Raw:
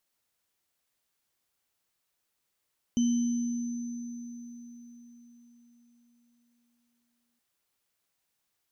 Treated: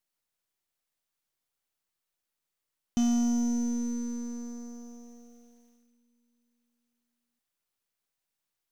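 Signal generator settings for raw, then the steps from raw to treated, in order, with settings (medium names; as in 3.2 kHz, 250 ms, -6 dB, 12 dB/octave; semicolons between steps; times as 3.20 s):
sine partials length 4.42 s, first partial 238 Hz, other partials 3.05/6.1 kHz, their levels -20/-16 dB, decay 4.61 s, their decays 1.05/4.31 s, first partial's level -21.5 dB
partial rectifier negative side -7 dB; waveshaping leveller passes 2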